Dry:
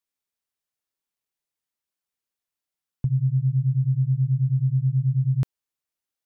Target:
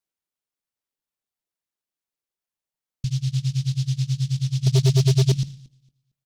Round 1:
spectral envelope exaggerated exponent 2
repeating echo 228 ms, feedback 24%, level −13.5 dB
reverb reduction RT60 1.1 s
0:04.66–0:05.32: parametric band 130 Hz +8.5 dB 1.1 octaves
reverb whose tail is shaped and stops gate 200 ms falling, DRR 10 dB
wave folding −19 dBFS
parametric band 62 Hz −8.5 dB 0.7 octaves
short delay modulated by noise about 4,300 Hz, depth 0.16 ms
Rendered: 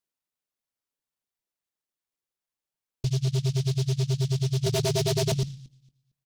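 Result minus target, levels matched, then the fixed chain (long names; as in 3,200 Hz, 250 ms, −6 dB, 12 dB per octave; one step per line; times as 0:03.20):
wave folding: distortion +21 dB
spectral envelope exaggerated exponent 2
repeating echo 228 ms, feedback 24%, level −13.5 dB
reverb reduction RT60 1.1 s
0:04.66–0:05.32: parametric band 130 Hz +8.5 dB 1.1 octaves
reverb whose tail is shaped and stops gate 200 ms falling, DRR 10 dB
wave folding −10.5 dBFS
parametric band 62 Hz −8.5 dB 0.7 octaves
short delay modulated by noise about 4,300 Hz, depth 0.16 ms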